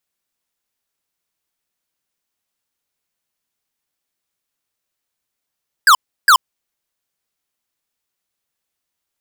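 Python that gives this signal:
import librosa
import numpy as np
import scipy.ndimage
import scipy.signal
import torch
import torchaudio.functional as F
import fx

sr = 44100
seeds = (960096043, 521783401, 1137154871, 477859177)

y = fx.laser_zaps(sr, level_db=-8.0, start_hz=1700.0, end_hz=970.0, length_s=0.08, wave='square', shots=2, gap_s=0.33)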